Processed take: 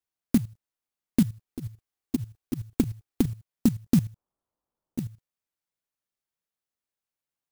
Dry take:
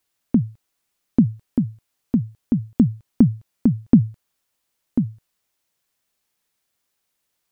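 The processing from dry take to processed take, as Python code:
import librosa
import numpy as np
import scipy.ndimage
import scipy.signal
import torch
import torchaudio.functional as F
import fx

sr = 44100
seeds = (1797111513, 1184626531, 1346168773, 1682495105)

y = fx.lowpass(x, sr, hz=1200.0, slope=24, at=(4.04, 5.05))
y = fx.level_steps(y, sr, step_db=15)
y = fx.comb(y, sr, ms=2.6, depth=0.78, at=(1.47, 3.3))
y = fx.clock_jitter(y, sr, seeds[0], jitter_ms=0.088)
y = F.gain(torch.from_numpy(y), -1.5).numpy()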